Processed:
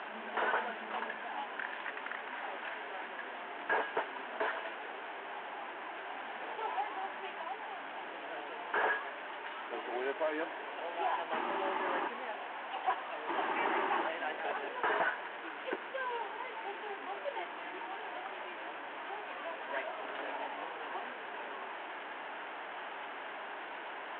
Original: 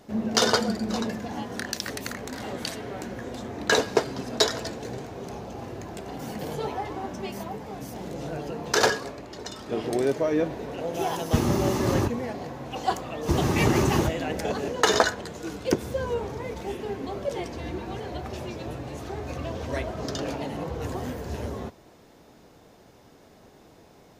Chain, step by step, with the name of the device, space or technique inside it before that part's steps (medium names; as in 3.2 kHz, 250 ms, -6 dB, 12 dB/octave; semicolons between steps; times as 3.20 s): 12.35–13.99 s: high-pass 140 Hz 12 dB/octave; digital answering machine (band-pass 340–3200 Hz; one-bit delta coder 16 kbps, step -32 dBFS; cabinet simulation 450–3800 Hz, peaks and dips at 490 Hz -7 dB, 920 Hz +6 dB, 1.6 kHz +6 dB, 3.1 kHz +3 dB); trim -5.5 dB